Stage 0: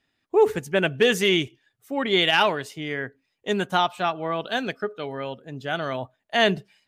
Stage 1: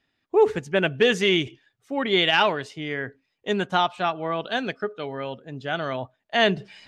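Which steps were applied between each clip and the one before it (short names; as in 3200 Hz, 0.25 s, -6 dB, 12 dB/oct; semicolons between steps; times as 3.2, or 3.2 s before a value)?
LPF 6000 Hz 12 dB/oct; reverse; upward compressor, threshold -35 dBFS; reverse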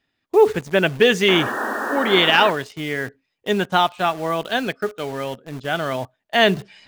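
painted sound noise, 1.28–2.51, 210–1900 Hz -29 dBFS; in parallel at -4 dB: bit-crush 6-bit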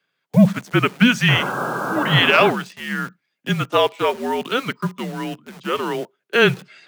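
Chebyshev high-pass 370 Hz, order 8; frequency shift -240 Hz; gain +1.5 dB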